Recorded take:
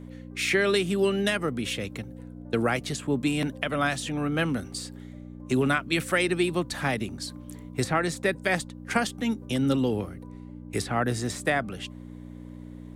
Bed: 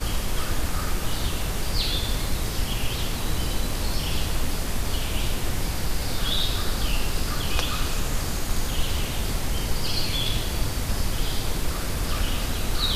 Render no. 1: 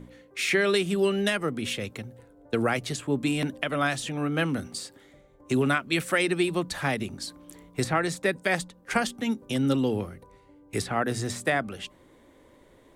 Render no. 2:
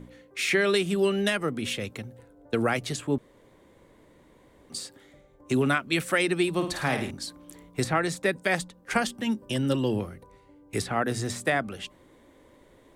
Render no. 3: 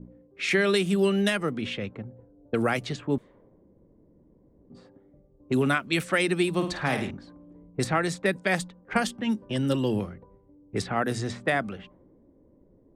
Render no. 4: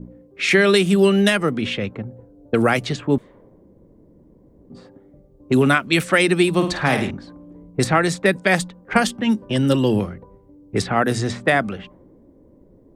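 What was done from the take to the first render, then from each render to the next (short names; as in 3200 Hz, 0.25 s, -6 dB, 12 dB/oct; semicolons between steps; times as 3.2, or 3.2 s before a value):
de-hum 60 Hz, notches 5
3.18–4.7 room tone; 6.53–7.11 flutter echo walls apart 9.2 m, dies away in 0.47 s; 9.12–9.99 ripple EQ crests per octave 1.3, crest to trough 7 dB
low-pass opened by the level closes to 350 Hz, open at -22.5 dBFS; bell 190 Hz +5 dB 0.24 oct
gain +8 dB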